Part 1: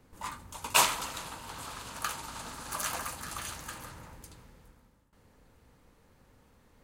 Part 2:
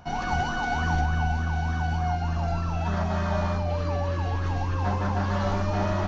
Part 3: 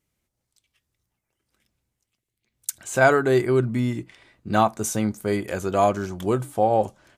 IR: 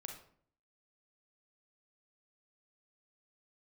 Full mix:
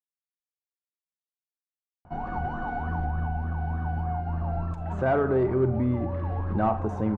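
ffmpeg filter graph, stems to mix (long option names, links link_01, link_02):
-filter_complex "[1:a]adelay=2050,volume=-1.5dB[link_01];[2:a]asoftclip=type=hard:threshold=-13.5dB,adelay=2050,volume=0.5dB,asplit=2[link_02][link_03];[link_03]volume=-6dB[link_04];[link_01][link_02]amix=inputs=2:normalize=0,alimiter=limit=-20dB:level=0:latency=1:release=213,volume=0dB[link_05];[3:a]atrim=start_sample=2205[link_06];[link_04][link_06]afir=irnorm=-1:irlink=0[link_07];[link_05][link_07]amix=inputs=2:normalize=0,lowpass=1100"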